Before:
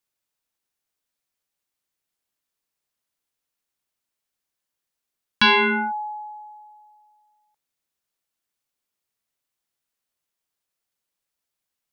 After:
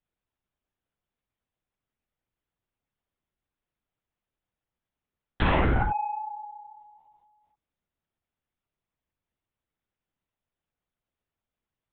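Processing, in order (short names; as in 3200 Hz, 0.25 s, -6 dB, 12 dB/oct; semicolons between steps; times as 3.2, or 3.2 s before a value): low shelf 270 Hz +10.5 dB; treble ducked by the level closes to 1400 Hz, closed at -26 dBFS; soft clip -18 dBFS, distortion -11 dB; LPC vocoder at 8 kHz whisper; mismatched tape noise reduction decoder only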